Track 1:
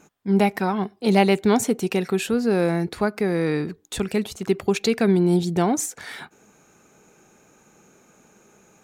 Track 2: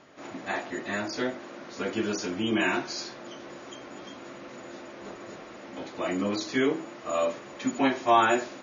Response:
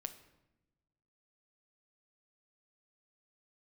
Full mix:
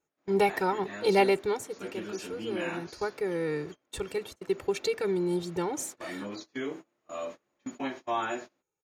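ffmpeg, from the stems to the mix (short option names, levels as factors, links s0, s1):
-filter_complex "[0:a]aecho=1:1:2.2:0.97,acrusher=bits=11:mix=0:aa=0.000001,volume=1.06,afade=t=out:st=1.17:d=0.48:silence=0.251189,afade=t=in:st=2.68:d=0.38:silence=0.446684[s0];[1:a]volume=0.316[s1];[s0][s1]amix=inputs=2:normalize=0,agate=range=0.0562:threshold=0.00891:ratio=16:detection=peak"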